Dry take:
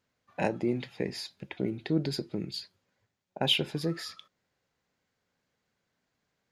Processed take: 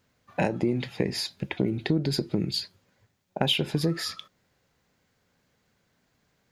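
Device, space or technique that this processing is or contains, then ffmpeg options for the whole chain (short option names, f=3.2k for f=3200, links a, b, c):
ASMR close-microphone chain: -af "lowshelf=f=210:g=5.5,acompressor=threshold=-29dB:ratio=6,highshelf=f=11k:g=4.5,volume=8dB"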